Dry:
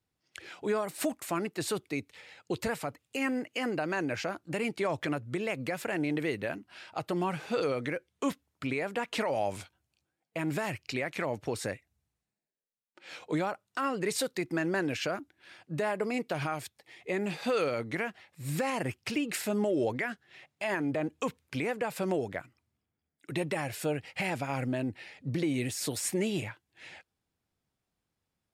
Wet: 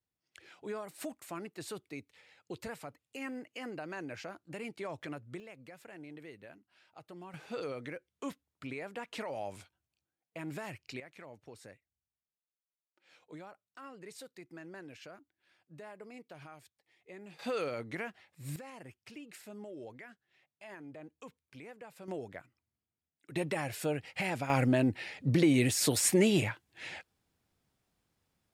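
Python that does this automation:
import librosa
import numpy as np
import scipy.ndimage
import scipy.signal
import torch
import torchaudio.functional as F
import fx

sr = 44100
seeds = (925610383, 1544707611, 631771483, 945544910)

y = fx.gain(x, sr, db=fx.steps((0.0, -10.0), (5.4, -18.0), (7.34, -9.0), (11.0, -18.0), (17.39, -6.0), (18.56, -17.5), (22.08, -9.5), (23.36, -2.0), (24.5, 5.0)))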